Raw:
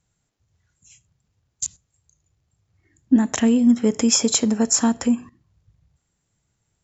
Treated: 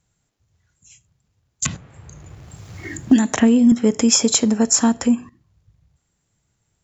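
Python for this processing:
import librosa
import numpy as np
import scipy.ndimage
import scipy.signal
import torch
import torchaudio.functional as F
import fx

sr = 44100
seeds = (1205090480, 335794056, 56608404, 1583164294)

y = fx.band_squash(x, sr, depth_pct=100, at=(1.65, 3.72))
y = F.gain(torch.from_numpy(y), 2.5).numpy()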